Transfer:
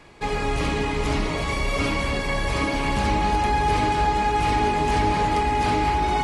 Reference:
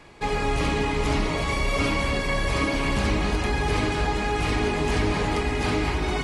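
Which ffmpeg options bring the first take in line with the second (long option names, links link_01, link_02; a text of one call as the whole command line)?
ffmpeg -i in.wav -af "bandreject=frequency=840:width=30" out.wav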